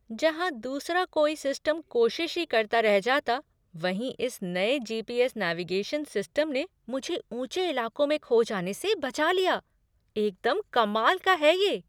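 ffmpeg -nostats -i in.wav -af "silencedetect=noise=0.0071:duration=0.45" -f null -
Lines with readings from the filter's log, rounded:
silence_start: 9.59
silence_end: 10.16 | silence_duration: 0.57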